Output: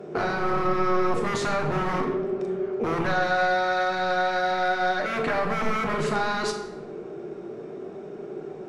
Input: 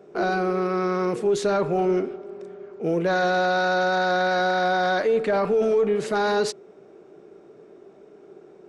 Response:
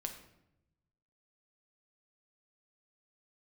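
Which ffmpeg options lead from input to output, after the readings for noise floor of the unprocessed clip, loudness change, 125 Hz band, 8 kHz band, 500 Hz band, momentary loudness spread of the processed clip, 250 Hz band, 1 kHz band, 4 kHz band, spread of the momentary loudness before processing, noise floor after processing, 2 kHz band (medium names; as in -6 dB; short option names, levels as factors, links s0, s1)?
-50 dBFS, -2.5 dB, 0.0 dB, -2.0 dB, -4.5 dB, 14 LU, -2.5 dB, 0.0 dB, -1.5 dB, 9 LU, -39 dBFS, -0.5 dB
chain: -filter_complex "[0:a]acrossover=split=780[s0][s1];[s0]aeval=exprs='0.0501*(abs(mod(val(0)/0.0501+3,4)-2)-1)':c=same[s2];[s2][s1]amix=inputs=2:normalize=0,acontrast=75,equalizer=f=180:t=o:w=1.1:g=3.5,acompressor=threshold=0.0447:ratio=5,highshelf=f=6500:g=-6.5[s3];[1:a]atrim=start_sample=2205,asetrate=31752,aresample=44100[s4];[s3][s4]afir=irnorm=-1:irlink=0,volume=1.33"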